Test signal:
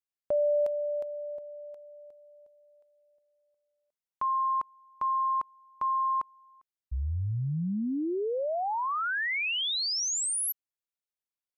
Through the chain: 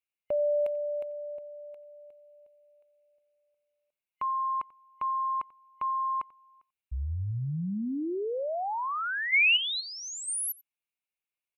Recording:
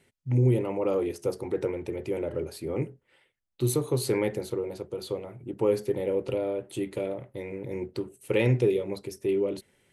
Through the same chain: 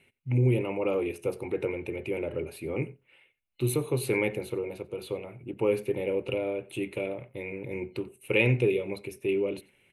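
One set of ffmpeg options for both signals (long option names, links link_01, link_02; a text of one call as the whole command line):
ffmpeg -i in.wav -filter_complex "[0:a]superequalizer=12b=3.16:14b=0.355:15b=0.447,asplit=2[link_01][link_02];[link_02]aecho=0:1:90:0.075[link_03];[link_01][link_03]amix=inputs=2:normalize=0,volume=-1.5dB" out.wav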